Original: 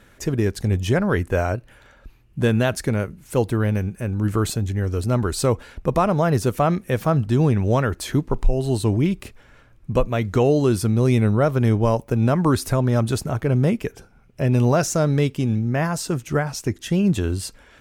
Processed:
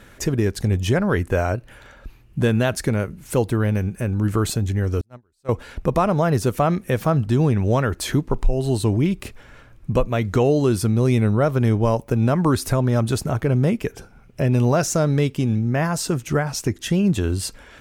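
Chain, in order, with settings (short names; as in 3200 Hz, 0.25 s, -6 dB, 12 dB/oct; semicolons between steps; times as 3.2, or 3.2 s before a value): in parallel at +3 dB: compressor 10:1, threshold -27 dBFS, peak gain reduction 16.5 dB; 5.01–5.49 on the sum: gate -11 dBFS, range -44 dB; gain -2.5 dB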